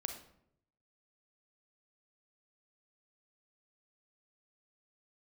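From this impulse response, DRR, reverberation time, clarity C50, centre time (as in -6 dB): 5.5 dB, 0.75 s, 7.0 dB, 18 ms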